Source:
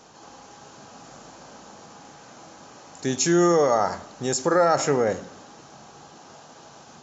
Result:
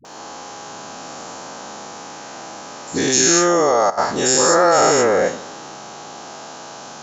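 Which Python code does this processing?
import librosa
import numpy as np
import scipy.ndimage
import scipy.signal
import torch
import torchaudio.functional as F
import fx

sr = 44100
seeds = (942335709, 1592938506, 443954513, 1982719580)

p1 = fx.spec_dilate(x, sr, span_ms=240)
p2 = fx.low_shelf(p1, sr, hz=180.0, db=-12.0)
p3 = fx.over_compress(p2, sr, threshold_db=-23.0, ratio=-1.0)
p4 = p2 + (p3 * 10.0 ** (-3.0 / 20.0))
p5 = fx.dispersion(p4, sr, late='highs', ms=50.0, hz=370.0)
y = fx.level_steps(p5, sr, step_db=15, at=(3.38, 3.97), fade=0.02)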